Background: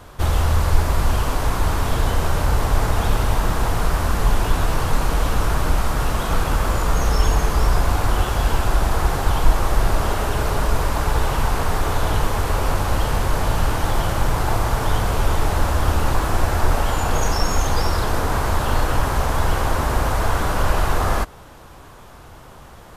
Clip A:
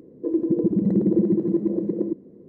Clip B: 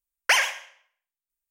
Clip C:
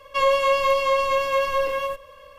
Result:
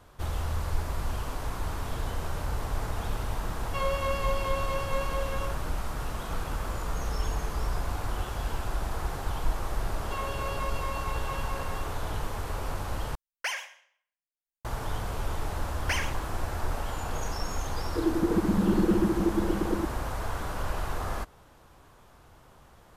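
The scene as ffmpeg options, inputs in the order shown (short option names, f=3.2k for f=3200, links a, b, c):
-filter_complex "[3:a]asplit=2[a][b];[2:a]asplit=2[c][d];[0:a]volume=-13dB[e];[b]aecho=1:1:6.6:0.65[f];[e]asplit=2[g][h];[g]atrim=end=13.154[i];[c]atrim=end=1.5,asetpts=PTS-STARTPTS,volume=-12.5dB[j];[h]atrim=start=14.646[k];[a]atrim=end=2.38,asetpts=PTS-STARTPTS,volume=-11.5dB,afade=t=in:d=0.004:c=hsin,afade=t=out:st=2.376:d=0.004:c=hsin,adelay=3590[l];[f]atrim=end=2.38,asetpts=PTS-STARTPTS,volume=-17dB,afade=t=in:d=0.004:c=hsin,afade=t=out:st=2.376:d=0.004:c=hsin,adelay=9960[m];[d]atrim=end=1.5,asetpts=PTS-STARTPTS,volume=-11dB,afade=t=in:d=0.004:c=hsin,afade=t=out:st=1.496:d=0.004:c=hsin,adelay=15600[n];[1:a]atrim=end=2.48,asetpts=PTS-STARTPTS,volume=-4.5dB,afade=t=in:d=0.004:c=hsin,afade=t=out:st=2.476:d=0.004:c=hsin,adelay=17720[o];[i][j]acrossfade=d=0.004:c1=hsin:c2=hsin[p];[p][k]acrossfade=d=0.004:c1=hsin:c2=hsin[q];[q][l][m][n][o]amix=inputs=5:normalize=0"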